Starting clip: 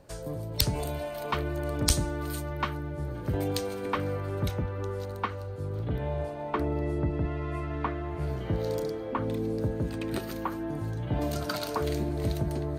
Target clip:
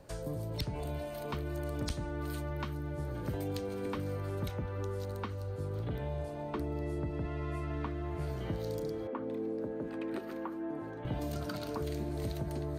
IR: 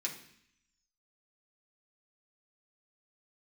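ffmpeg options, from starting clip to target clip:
-filter_complex "[0:a]asettb=1/sr,asplit=3[link_01][link_02][link_03];[link_01]atrim=end=9.074[link_04];[link_02]atrim=start=9.07:end=11.05,asetpts=PTS-STARTPTS,afade=type=in:duration=0.004:curve=qsin,afade=type=out:start_time=1.976:duration=0.004:curve=qsin,acrossover=split=240 2500:gain=0.0794 1 0.126[link_05][link_06][link_07];[link_05][link_06][link_07]amix=inputs=3:normalize=0[link_08];[link_03]atrim=start=11.046[link_09];[link_04][link_08]acrossfade=duration=0.004:curve1=hsin:curve2=qsin[link_10];[link_10][link_09]acrossfade=duration=0.004:curve1=qsin:curve2=hsin,acrossover=split=400|3900[link_11][link_12][link_13];[link_11]acompressor=threshold=-35dB:ratio=4[link_14];[link_12]acompressor=threshold=-43dB:ratio=4[link_15];[link_13]acompressor=threshold=-53dB:ratio=4[link_16];[link_14][link_15][link_16]amix=inputs=3:normalize=0"

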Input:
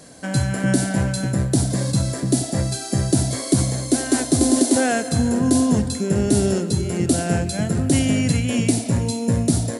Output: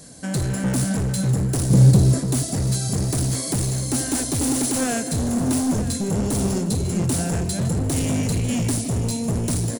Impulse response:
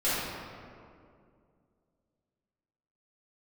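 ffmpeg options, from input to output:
-filter_complex "[0:a]bass=frequency=250:gain=9,treble=frequency=4000:gain=8,asoftclip=type=hard:threshold=-15dB,asettb=1/sr,asplit=3[link_01][link_02][link_03];[link_01]atrim=end=1.704[link_04];[link_02]atrim=start=1.7:end=2.19,asetpts=PTS-STARTPTS,afade=type=in:duration=0.004:curve=qsin,afade=type=out:start_time=0.486:duration=0.004:curve=qsin,equalizer=frequency=170:width=0.34:gain=9.5[link_05];[link_03]atrim=start=2.186[link_06];[link_04][link_05]acrossfade=duration=0.004:curve1=hsin:curve2=qsin[link_07];[link_07][link_06]acrossfade=duration=0.004:curve1=qsin:curve2=hsin,asplit=2[link_08][link_09];[link_09]aecho=0:1:950:0.2[link_10];[link_08][link_10]amix=inputs=2:normalize=0,flanger=delay=1.5:depth=6.9:regen=73:speed=1.9:shape=triangular"

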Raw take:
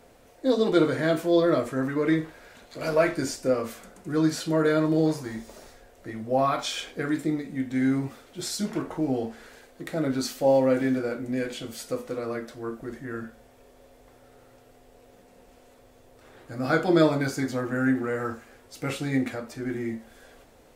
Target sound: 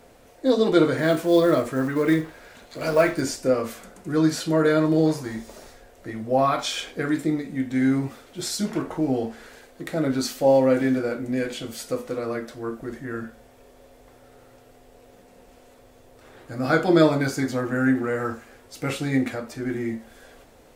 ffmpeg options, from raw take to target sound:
ffmpeg -i in.wav -filter_complex "[0:a]asettb=1/sr,asplit=3[link_01][link_02][link_03];[link_01]atrim=end=0.974[link_04];[link_02]atrim=start=0.97:end=3.21,asetpts=PTS-STARTPTS,afade=type=in:duration=0.004:curve=qsin,afade=type=out:start_time=2.236:duration=0.004:curve=qsin,acrusher=bits=7:mode=log:mix=0:aa=0.000001[link_05];[link_03]atrim=start=3.206[link_06];[link_04][link_05]acrossfade=duration=0.004:curve1=hsin:curve2=qsin[link_07];[link_07][link_06]acrossfade=duration=0.004:curve1=qsin:curve2=hsin,volume=3dB" out.wav

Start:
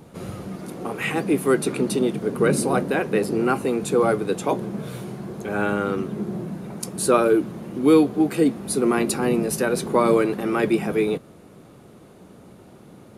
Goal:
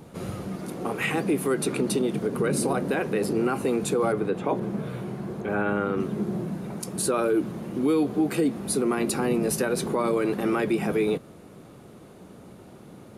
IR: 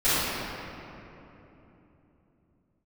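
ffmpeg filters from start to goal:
-filter_complex "[0:a]alimiter=limit=-15.5dB:level=0:latency=1:release=76,asettb=1/sr,asplit=3[link_01][link_02][link_03];[link_01]atrim=end=4.124[link_04];[link_02]atrim=start=4.12:end=6,asetpts=PTS-STARTPTS,afade=type=in:duration=0.004:curve=qsin,afade=type=out:start_time=1.876:duration=0.004:curve=qsin,acrossover=split=2900[link_05][link_06];[link_06]acompressor=threshold=-58dB:ratio=4:attack=1:release=60[link_07];[link_05][link_07]amix=inputs=2:normalize=0[link_08];[link_03]atrim=start=5.996[link_09];[link_04][link_08]acrossfade=duration=0.004:curve1=hsin:curve2=qsin[link_10];[link_10][link_09]acrossfade=duration=0.004:curve1=qsin:curve2=hsin"

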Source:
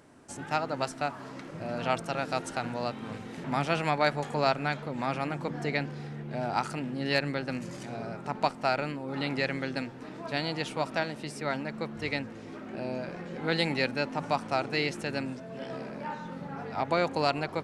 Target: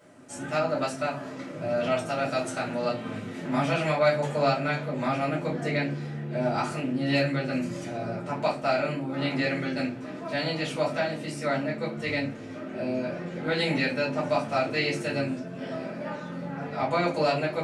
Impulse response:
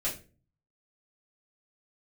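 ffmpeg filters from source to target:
-filter_complex "[0:a]highpass=92,asplit=2[link_01][link_02];[link_02]alimiter=limit=-18.5dB:level=0:latency=1,volume=1dB[link_03];[link_01][link_03]amix=inputs=2:normalize=0[link_04];[1:a]atrim=start_sample=2205[link_05];[link_04][link_05]afir=irnorm=-1:irlink=0,volume=-8dB"

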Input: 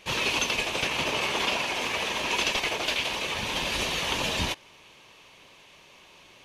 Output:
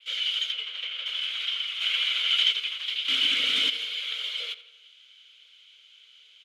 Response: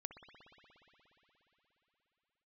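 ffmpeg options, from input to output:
-filter_complex "[0:a]asettb=1/sr,asplit=3[link_01][link_02][link_03];[link_01]atrim=end=0.524[link_04];[link_02]atrim=start=0.52:end=1.06,asetpts=PTS-STARTPTS,afade=type=in:duration=0.004:curve=qsin,afade=type=out:start_time=0.536:duration=0.004:curve=qsin,aemphasis=mode=reproduction:type=75kf[link_05];[link_03]atrim=start=1.056[link_06];[link_04][link_05]acrossfade=duration=0.004:curve1=hsin:curve2=qsin[link_07];[link_07][link_06]acrossfade=duration=0.004:curve1=qsin:curve2=hsin,acrossover=split=510|1300[link_08][link_09][link_10];[link_09]acontrast=76[link_11];[link_08][link_11][link_10]amix=inputs=3:normalize=0,adynamicequalizer=threshold=0.00447:dfrequency=6000:dqfactor=1.3:tfrequency=6000:tqfactor=1.3:attack=5:release=100:ratio=0.375:range=3:mode=cutabove:tftype=bell,asplit=3[link_12][link_13][link_14];[link_12]afade=type=out:start_time=1.8:duration=0.02[link_15];[link_13]acontrast=80,afade=type=in:start_time=1.8:duration=0.02,afade=type=out:start_time=2.51:duration=0.02[link_16];[link_14]afade=type=in:start_time=2.51:duration=0.02[link_17];[link_15][link_16][link_17]amix=inputs=3:normalize=0,afreqshift=410,asettb=1/sr,asplit=3[link_18][link_19][link_20];[link_18]atrim=end=3.084[link_21];[link_19]atrim=start=3.08:end=3.7,asetpts=PTS-STARTPTS,afade=type=in:duration=0.004:curve=qsin,afade=type=out:start_time=0.616:duration=0.004:curve=qsin,aeval=exprs='0.2*sin(PI/2*2.82*val(0)/0.2)':channel_layout=same[link_22];[link_20]atrim=start=3.696[link_23];[link_21][link_22]acrossfade=duration=0.004:curve1=hsin:curve2=qsin[link_24];[link_24][link_23]acrossfade=duration=0.004:curve1=qsin:curve2=hsin,aexciter=amount=1.8:drive=9.1:freq=2700,asplit=3[link_25][link_26][link_27];[link_25]bandpass=frequency=270:width_type=q:width=8,volume=0dB[link_28];[link_26]bandpass=frequency=2290:width_type=q:width=8,volume=-6dB[link_29];[link_27]bandpass=frequency=3010:width_type=q:width=8,volume=-9dB[link_30];[link_28][link_29][link_30]amix=inputs=3:normalize=0,asplit=2[link_31][link_32];[link_32]adelay=84,lowpass=frequency=4600:poles=1,volume=-15dB,asplit=2[link_33][link_34];[link_34]adelay=84,lowpass=frequency=4600:poles=1,volume=0.52,asplit=2[link_35][link_36];[link_36]adelay=84,lowpass=frequency=4600:poles=1,volume=0.52,asplit=2[link_37][link_38];[link_38]adelay=84,lowpass=frequency=4600:poles=1,volume=0.52,asplit=2[link_39][link_40];[link_40]adelay=84,lowpass=frequency=4600:poles=1,volume=0.52[link_41];[link_31][link_33][link_35][link_37][link_39][link_41]amix=inputs=6:normalize=0,volume=3dB"

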